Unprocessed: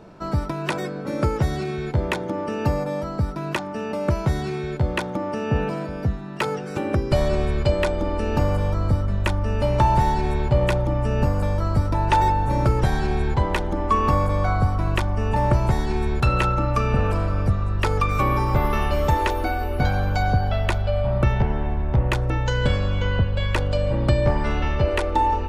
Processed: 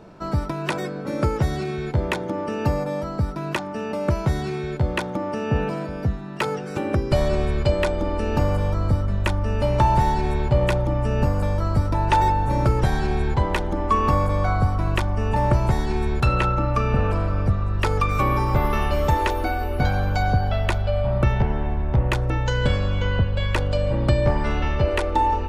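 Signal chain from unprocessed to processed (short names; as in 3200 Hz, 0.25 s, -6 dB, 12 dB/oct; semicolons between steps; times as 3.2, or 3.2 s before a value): 16.35–17.74 high shelf 6600 Hz -8.5 dB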